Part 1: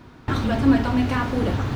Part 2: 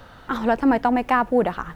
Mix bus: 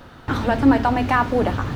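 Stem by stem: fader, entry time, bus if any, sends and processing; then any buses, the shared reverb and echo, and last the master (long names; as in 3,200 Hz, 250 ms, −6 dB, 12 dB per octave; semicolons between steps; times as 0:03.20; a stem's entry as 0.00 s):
−1.5 dB, 0.00 s, no send, no processing
0.0 dB, 0.00 s, polarity flipped, no send, no processing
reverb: not used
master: no processing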